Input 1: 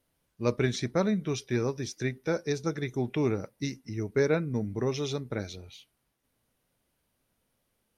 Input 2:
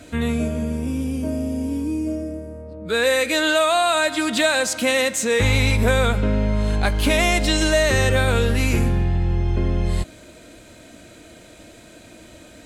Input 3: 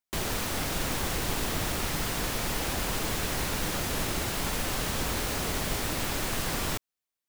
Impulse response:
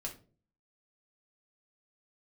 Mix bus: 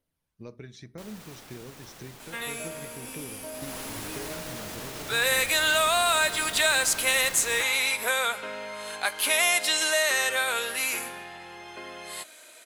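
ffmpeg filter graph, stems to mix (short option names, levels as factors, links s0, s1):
-filter_complex "[0:a]acompressor=threshold=0.02:ratio=6,aphaser=in_gain=1:out_gain=1:delay=1.3:decay=0.32:speed=1.9:type=triangular,volume=0.335,asplit=2[s0][s1];[s1]volume=0.299[s2];[1:a]highpass=890,equalizer=f=11000:t=o:w=0.44:g=11.5,adelay=2200,volume=0.794[s3];[2:a]lowshelf=f=120:g=-11,alimiter=level_in=1.33:limit=0.0631:level=0:latency=1,volume=0.75,adelay=850,volume=0.75,afade=t=in:st=3.52:d=0.24:silence=0.316228[s4];[3:a]atrim=start_sample=2205[s5];[s2][s5]afir=irnorm=-1:irlink=0[s6];[s0][s3][s4][s6]amix=inputs=4:normalize=0"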